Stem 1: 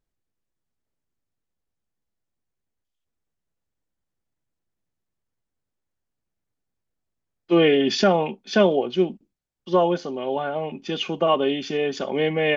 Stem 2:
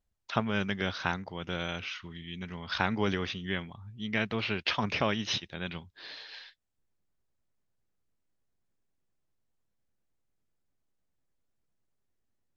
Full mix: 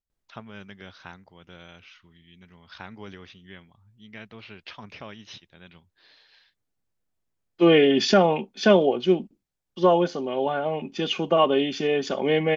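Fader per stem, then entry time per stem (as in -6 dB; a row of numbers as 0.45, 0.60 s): +0.5, -12.0 dB; 0.10, 0.00 s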